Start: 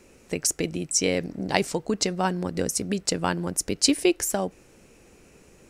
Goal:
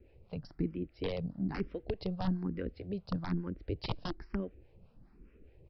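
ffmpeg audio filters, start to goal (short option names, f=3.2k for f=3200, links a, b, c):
-filter_complex "[0:a]acrossover=split=540[a][b];[a]aeval=exprs='val(0)*(1-0.7/2+0.7/2*cos(2*PI*4.8*n/s))':c=same[c];[b]aeval=exprs='val(0)*(1-0.7/2-0.7/2*cos(2*PI*4.8*n/s))':c=same[d];[c][d]amix=inputs=2:normalize=0,aresample=11025,aeval=exprs='(mod(7.08*val(0)+1,2)-1)/7.08':c=same,aresample=44100,aemphasis=mode=reproduction:type=riaa,asplit=2[e][f];[f]afreqshift=1.1[g];[e][g]amix=inputs=2:normalize=1,volume=-8.5dB"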